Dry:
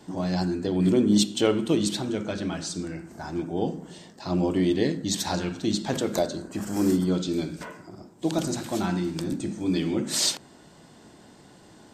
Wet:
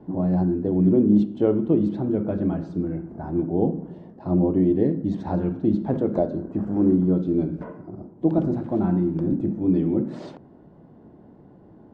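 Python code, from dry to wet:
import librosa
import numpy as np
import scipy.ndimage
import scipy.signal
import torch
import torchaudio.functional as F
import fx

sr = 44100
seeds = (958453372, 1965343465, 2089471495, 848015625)

p1 = fx.rider(x, sr, range_db=4, speed_s=0.5)
p2 = x + F.gain(torch.from_numpy(p1), -1.0).numpy()
y = scipy.signal.sosfilt(scipy.signal.bessel(2, 510.0, 'lowpass', norm='mag', fs=sr, output='sos'), p2)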